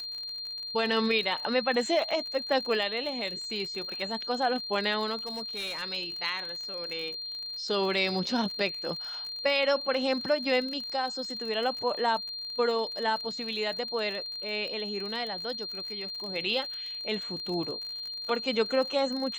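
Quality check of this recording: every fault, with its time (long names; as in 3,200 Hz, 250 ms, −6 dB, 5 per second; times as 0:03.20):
surface crackle 46 per second −36 dBFS
whistle 4,200 Hz −35 dBFS
0:05.16–0:05.83: clipping −30.5 dBFS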